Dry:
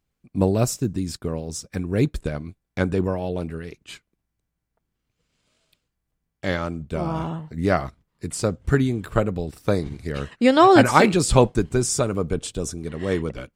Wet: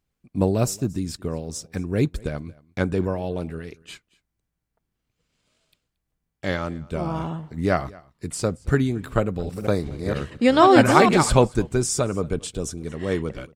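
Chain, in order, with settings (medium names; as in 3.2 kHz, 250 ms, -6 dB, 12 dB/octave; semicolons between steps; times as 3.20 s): 9.20–11.33 s: chunks repeated in reverse 236 ms, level -5.5 dB; delay 227 ms -23.5 dB; trim -1 dB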